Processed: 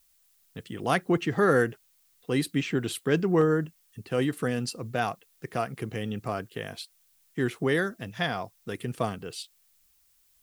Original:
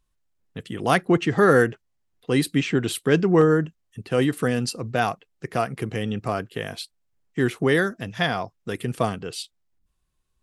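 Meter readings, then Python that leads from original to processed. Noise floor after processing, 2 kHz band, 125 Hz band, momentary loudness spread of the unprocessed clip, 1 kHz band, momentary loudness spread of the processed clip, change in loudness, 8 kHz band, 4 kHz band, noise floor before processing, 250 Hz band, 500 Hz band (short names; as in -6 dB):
-65 dBFS, -5.5 dB, -5.5 dB, 18 LU, -5.5 dB, 18 LU, -5.5 dB, -5.5 dB, -5.5 dB, -73 dBFS, -5.5 dB, -5.5 dB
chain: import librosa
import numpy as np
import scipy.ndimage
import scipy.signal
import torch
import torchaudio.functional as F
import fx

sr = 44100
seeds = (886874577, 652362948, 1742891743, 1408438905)

y = fx.dmg_noise_colour(x, sr, seeds[0], colour='blue', level_db=-60.0)
y = y * 10.0 ** (-5.5 / 20.0)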